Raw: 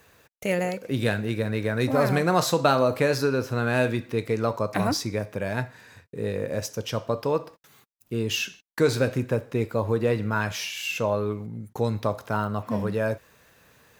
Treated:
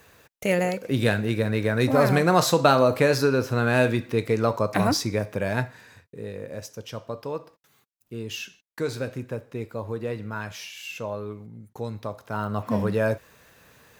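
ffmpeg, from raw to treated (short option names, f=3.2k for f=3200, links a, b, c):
-af "volume=12dB,afade=t=out:st=5.59:d=0.67:silence=0.334965,afade=t=in:st=12.25:d=0.42:silence=0.334965"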